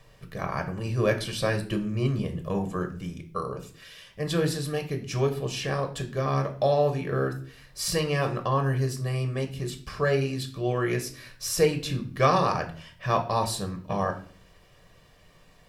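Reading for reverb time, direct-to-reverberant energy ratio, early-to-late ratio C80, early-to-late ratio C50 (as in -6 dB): 0.45 s, 5.0 dB, 16.5 dB, 12.5 dB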